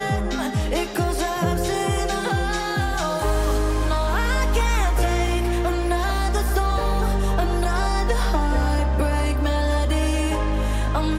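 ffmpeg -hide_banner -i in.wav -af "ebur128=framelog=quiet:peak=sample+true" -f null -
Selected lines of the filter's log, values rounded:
Integrated loudness:
  I:         -22.6 LUFS
  Threshold: -32.6 LUFS
Loudness range:
  LRA:         1.0 LU
  Threshold: -42.5 LUFS
  LRA low:   -23.2 LUFS
  LRA high:  -22.2 LUFS
Sample peak:
  Peak:       -8.6 dBFS
True peak:
  Peak:       -8.6 dBFS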